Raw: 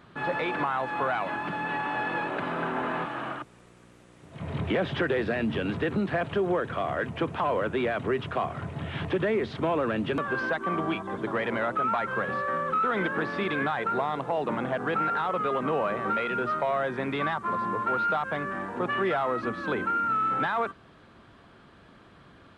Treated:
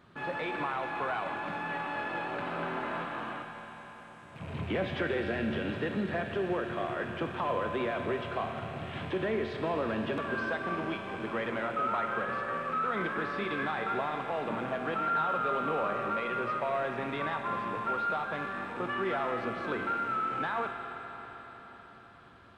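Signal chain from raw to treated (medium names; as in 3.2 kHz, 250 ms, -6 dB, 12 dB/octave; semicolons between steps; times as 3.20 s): rattle on loud lows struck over -42 dBFS, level -36 dBFS; on a send: reverberation RT60 5.0 s, pre-delay 5 ms, DRR 3 dB; on the sum: trim -6 dB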